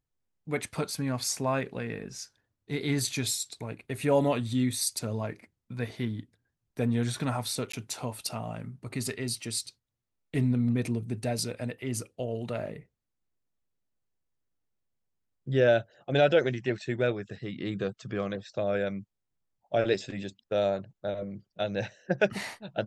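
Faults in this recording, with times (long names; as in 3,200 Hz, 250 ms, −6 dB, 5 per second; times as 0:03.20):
0:07.72–0:07.73: drop-out 14 ms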